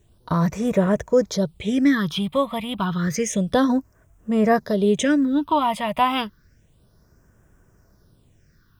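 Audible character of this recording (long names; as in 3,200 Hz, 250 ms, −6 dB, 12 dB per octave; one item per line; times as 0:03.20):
a quantiser's noise floor 12 bits, dither none
phaser sweep stages 6, 0.3 Hz, lowest notch 410–4,200 Hz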